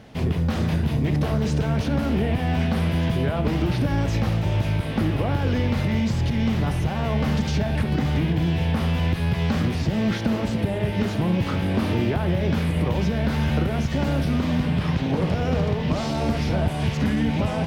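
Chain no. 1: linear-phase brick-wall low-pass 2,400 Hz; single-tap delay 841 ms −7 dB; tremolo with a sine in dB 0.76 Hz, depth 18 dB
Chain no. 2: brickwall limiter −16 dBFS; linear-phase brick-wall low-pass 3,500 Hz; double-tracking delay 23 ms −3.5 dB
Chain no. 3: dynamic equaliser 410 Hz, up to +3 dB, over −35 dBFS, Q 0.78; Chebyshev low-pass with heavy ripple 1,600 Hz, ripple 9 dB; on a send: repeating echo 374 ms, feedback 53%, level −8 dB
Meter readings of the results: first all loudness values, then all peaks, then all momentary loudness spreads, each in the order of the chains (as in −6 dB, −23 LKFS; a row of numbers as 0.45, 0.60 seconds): −27.0, −23.5, −27.5 LKFS; −9.5, −11.5, −11.5 dBFS; 15, 3, 3 LU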